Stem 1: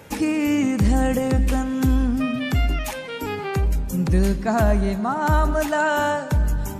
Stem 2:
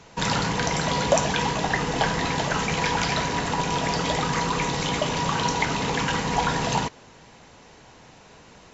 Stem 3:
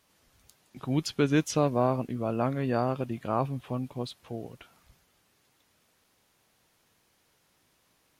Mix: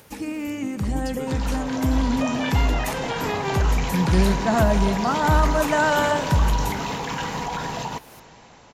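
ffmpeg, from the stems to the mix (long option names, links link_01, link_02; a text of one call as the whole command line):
ffmpeg -i stem1.wav -i stem2.wav -i stem3.wav -filter_complex "[0:a]volume=-3.5dB[link_01];[1:a]adelay=1100,volume=-0.5dB[link_02];[2:a]highshelf=frequency=9900:gain=10.5,acompressor=mode=upward:threshold=-37dB:ratio=2.5,volume=-0.5dB[link_03];[link_02][link_03]amix=inputs=2:normalize=0,equalizer=frequency=850:width=1.5:gain=3.5,alimiter=limit=-23dB:level=0:latency=1:release=189,volume=0dB[link_04];[link_01][link_04]amix=inputs=2:normalize=0,dynaudnorm=framelen=220:gausssize=17:maxgain=11.5dB,flanger=delay=5.2:depth=6.8:regen=-89:speed=0.91:shape=sinusoidal" out.wav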